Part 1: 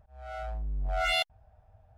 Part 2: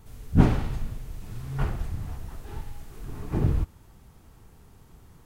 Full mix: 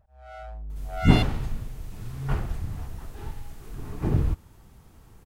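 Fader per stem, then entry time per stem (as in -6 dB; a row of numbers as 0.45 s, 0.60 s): -3.0 dB, +0.5 dB; 0.00 s, 0.70 s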